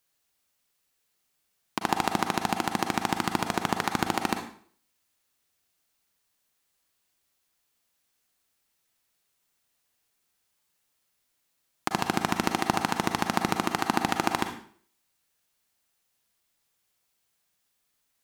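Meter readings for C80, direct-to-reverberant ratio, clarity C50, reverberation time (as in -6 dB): 11.0 dB, 5.0 dB, 6.5 dB, 0.50 s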